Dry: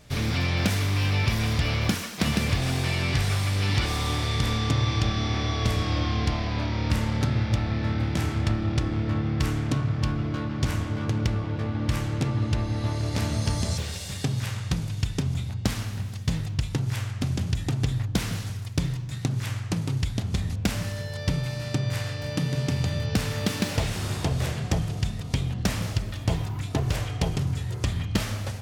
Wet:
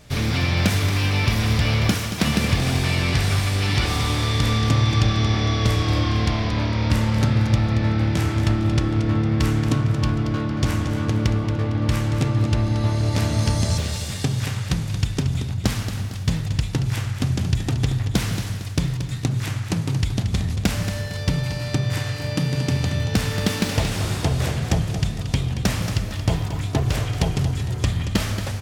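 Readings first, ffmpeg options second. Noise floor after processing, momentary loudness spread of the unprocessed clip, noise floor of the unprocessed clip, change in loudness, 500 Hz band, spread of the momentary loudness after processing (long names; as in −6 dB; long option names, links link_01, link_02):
−29 dBFS, 5 LU, −34 dBFS, +5.0 dB, +5.0 dB, 5 LU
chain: -af "aecho=1:1:228|456|684|912|1140:0.335|0.141|0.0591|0.0248|0.0104,volume=4dB"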